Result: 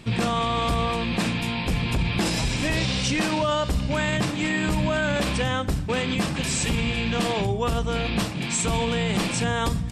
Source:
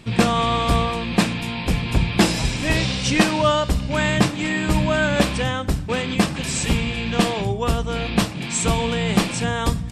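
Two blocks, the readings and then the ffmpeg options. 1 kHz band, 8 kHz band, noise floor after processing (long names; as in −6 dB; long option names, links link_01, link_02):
−3.5 dB, −2.5 dB, −29 dBFS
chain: -af "alimiter=limit=-15dB:level=0:latency=1:release=35"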